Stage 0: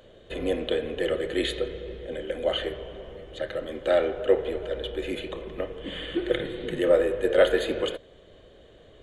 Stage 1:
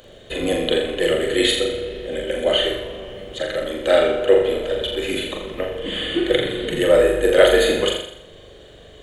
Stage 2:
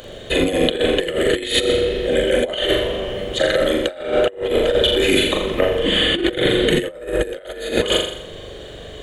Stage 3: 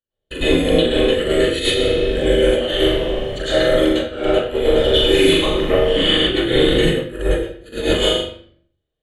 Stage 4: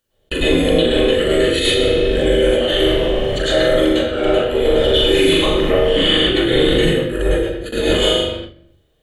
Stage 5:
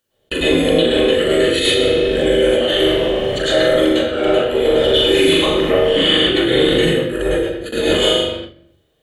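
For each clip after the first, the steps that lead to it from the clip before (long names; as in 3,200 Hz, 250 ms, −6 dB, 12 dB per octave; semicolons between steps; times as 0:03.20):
high-shelf EQ 3,500 Hz +10 dB; on a send: flutter between parallel walls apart 7.1 metres, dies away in 0.66 s; on the sum: level +5 dB
compressor whose output falls as the input rises −23 dBFS, ratio −0.5; level +5 dB
noise gate −25 dBFS, range −48 dB; convolution reverb RT60 0.55 s, pre-delay 99 ms, DRR −12 dB; level −12.5 dB
noise gate with hold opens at −29 dBFS; envelope flattener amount 50%; level −1 dB
high-pass filter 120 Hz 6 dB per octave; level +1 dB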